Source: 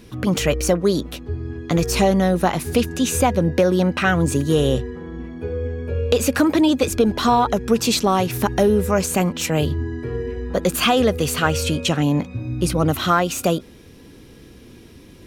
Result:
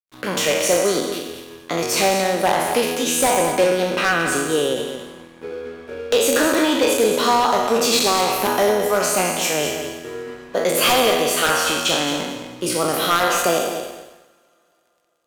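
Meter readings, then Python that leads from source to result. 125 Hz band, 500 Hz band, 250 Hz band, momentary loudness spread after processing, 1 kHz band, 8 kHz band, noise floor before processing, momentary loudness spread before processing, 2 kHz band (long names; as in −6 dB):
−12.5 dB, +1.5 dB, −5.0 dB, 14 LU, +2.5 dB, +5.5 dB, −44 dBFS, 10 LU, +4.0 dB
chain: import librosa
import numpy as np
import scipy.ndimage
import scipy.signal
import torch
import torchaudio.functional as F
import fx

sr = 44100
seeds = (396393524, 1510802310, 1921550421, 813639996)

p1 = fx.spec_trails(x, sr, decay_s=1.21)
p2 = scipy.signal.sosfilt(scipy.signal.butter(2, 360.0, 'highpass', fs=sr, output='sos'), p1)
p3 = np.sign(p2) * np.maximum(np.abs(p2) - 10.0 ** (-38.5 / 20.0), 0.0)
p4 = fx.rev_double_slope(p3, sr, seeds[0], early_s=0.66, late_s=3.5, knee_db=-18, drr_db=17.0)
p5 = 10.0 ** (-9.5 / 20.0) * (np.abs((p4 / 10.0 ** (-9.5 / 20.0) + 3.0) % 4.0 - 2.0) - 1.0)
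p6 = p5 + fx.echo_feedback(p5, sr, ms=218, feedback_pct=16, wet_db=-9.0, dry=0)
y = fx.end_taper(p6, sr, db_per_s=120.0)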